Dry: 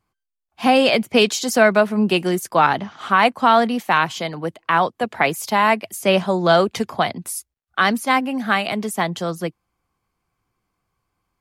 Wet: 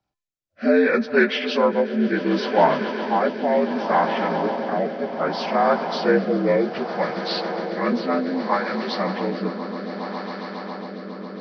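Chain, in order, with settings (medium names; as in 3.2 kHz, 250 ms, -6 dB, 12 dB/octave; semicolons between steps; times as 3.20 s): frequency axis rescaled in octaves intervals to 77%; echo with a slow build-up 137 ms, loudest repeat 8, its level -16.5 dB; rotary cabinet horn 0.65 Hz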